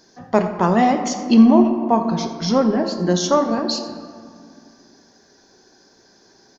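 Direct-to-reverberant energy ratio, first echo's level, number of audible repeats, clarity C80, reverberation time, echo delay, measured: 5.0 dB, -17.0 dB, 1, 8.5 dB, 2.1 s, 87 ms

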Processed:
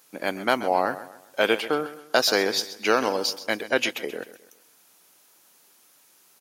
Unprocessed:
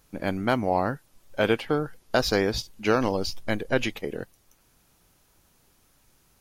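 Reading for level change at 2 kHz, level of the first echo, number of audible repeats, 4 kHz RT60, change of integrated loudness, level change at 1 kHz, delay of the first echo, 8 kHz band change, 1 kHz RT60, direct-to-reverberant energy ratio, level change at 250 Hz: +4.5 dB, -14.5 dB, 3, none, +2.0 dB, +3.0 dB, 0.131 s, +7.0 dB, none, none, -3.5 dB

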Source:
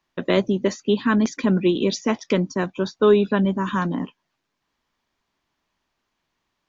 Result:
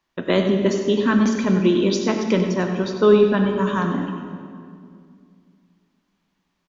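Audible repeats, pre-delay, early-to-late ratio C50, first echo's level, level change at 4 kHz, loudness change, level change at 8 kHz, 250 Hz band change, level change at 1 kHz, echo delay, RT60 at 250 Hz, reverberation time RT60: 1, 23 ms, 4.5 dB, -10.5 dB, +1.5 dB, +2.0 dB, n/a, +2.5 dB, +1.5 dB, 96 ms, 2.9 s, 2.3 s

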